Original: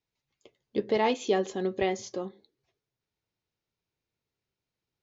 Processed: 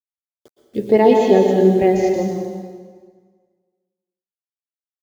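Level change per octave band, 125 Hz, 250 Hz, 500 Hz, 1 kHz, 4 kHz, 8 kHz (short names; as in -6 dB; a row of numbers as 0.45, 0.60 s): +18.0 dB, +16.0 dB, +15.0 dB, +11.0 dB, +3.5 dB, n/a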